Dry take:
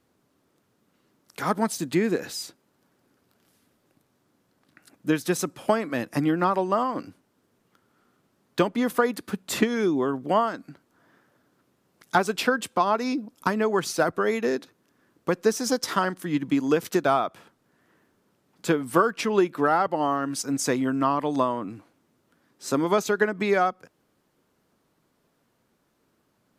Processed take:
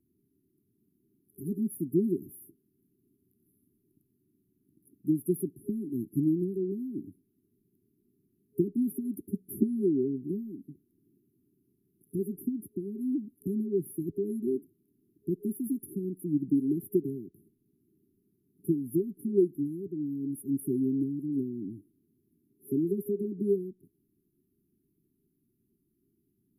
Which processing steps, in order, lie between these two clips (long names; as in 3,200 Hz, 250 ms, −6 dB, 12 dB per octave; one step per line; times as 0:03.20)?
brick-wall band-stop 410–10,000 Hz
level −2.5 dB